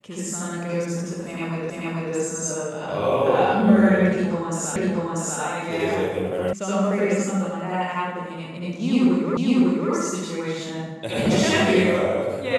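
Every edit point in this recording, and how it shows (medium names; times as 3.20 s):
1.70 s: repeat of the last 0.44 s
4.76 s: repeat of the last 0.64 s
6.53 s: sound stops dead
9.37 s: repeat of the last 0.55 s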